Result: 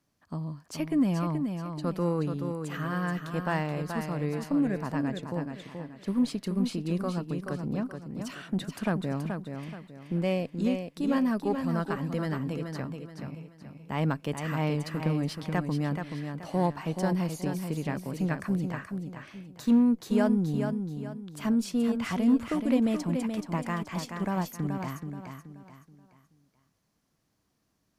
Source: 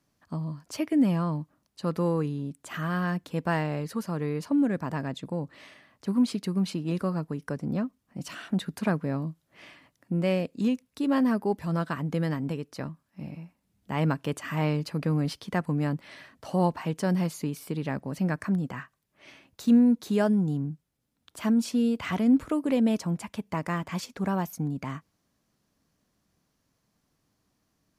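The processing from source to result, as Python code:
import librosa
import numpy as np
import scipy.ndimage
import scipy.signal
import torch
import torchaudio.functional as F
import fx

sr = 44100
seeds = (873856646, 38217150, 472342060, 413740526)

y = fx.cheby_harmonics(x, sr, harmonics=(6,), levels_db=(-28,), full_scale_db=-11.5)
y = fx.echo_feedback(y, sr, ms=428, feedback_pct=35, wet_db=-6.5)
y = y * librosa.db_to_amplitude(-2.5)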